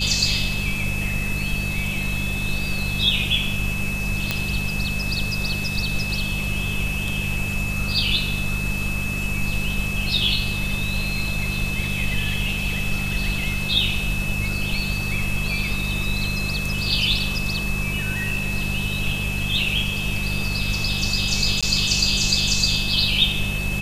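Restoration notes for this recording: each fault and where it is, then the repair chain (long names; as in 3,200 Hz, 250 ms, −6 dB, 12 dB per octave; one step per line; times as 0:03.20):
mains hum 50 Hz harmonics 4 −28 dBFS
whistle 2,600 Hz −27 dBFS
0:04.31: click −6 dBFS
0:21.61–0:21.63: drop-out 16 ms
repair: click removal
hum removal 50 Hz, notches 4
notch filter 2,600 Hz, Q 30
repair the gap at 0:21.61, 16 ms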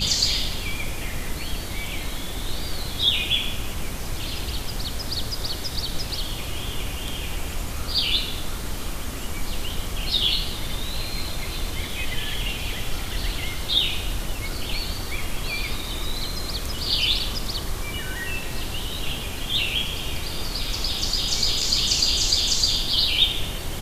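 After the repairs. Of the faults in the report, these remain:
none of them is left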